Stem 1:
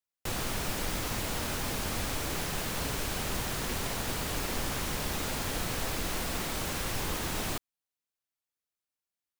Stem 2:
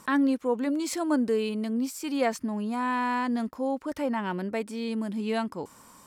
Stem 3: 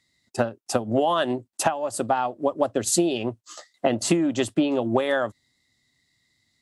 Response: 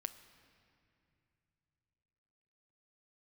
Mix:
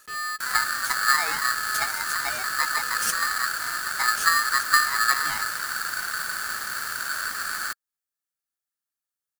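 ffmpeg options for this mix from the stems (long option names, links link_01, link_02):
-filter_complex "[0:a]adelay=150,volume=2.5dB[link_01];[1:a]highshelf=frequency=11000:gain=11.5,asoftclip=type=tanh:threshold=-28.5dB,volume=-4dB,asplit=2[link_02][link_03];[link_03]volume=-18.5dB[link_04];[2:a]asplit=2[link_05][link_06];[link_06]adelay=4.6,afreqshift=2[link_07];[link_05][link_07]amix=inputs=2:normalize=1,adelay=150,volume=-0.5dB[link_08];[link_04]aecho=0:1:310:1[link_09];[link_01][link_02][link_08][link_09]amix=inputs=4:normalize=0,equalizer=frequency=125:width_type=o:width=1:gain=5,equalizer=frequency=250:width_type=o:width=1:gain=6,equalizer=frequency=500:width_type=o:width=1:gain=-5,equalizer=frequency=1000:width_type=o:width=1:gain=-9,equalizer=frequency=2000:width_type=o:width=1:gain=-8,equalizer=frequency=4000:width_type=o:width=1:gain=-10,equalizer=frequency=8000:width_type=o:width=1:gain=3,aeval=exprs='val(0)*sgn(sin(2*PI*1500*n/s))':channel_layout=same"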